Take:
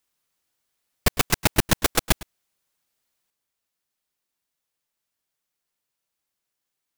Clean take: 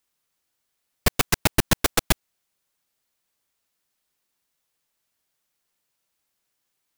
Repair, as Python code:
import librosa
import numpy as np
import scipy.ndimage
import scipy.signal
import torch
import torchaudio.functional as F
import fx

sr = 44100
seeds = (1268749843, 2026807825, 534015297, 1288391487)

y = fx.fix_echo_inverse(x, sr, delay_ms=107, level_db=-19.5)
y = fx.fix_level(y, sr, at_s=3.3, step_db=5.5)